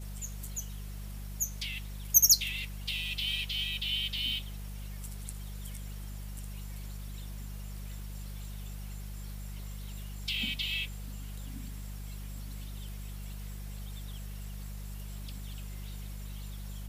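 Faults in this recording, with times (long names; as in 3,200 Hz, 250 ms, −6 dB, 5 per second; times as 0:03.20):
mains hum 50 Hz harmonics 4 −41 dBFS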